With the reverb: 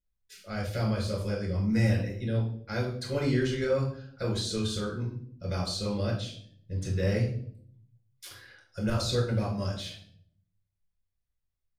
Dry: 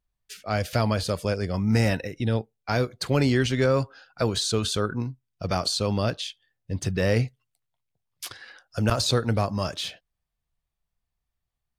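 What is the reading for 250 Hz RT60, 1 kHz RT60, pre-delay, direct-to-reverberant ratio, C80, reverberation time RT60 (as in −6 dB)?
0.90 s, 0.45 s, 6 ms, −2.5 dB, 10.5 dB, 0.60 s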